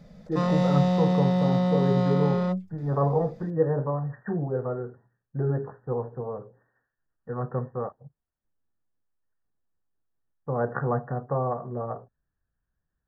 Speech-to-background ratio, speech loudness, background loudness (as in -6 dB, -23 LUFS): -4.0 dB, -29.0 LUFS, -25.0 LUFS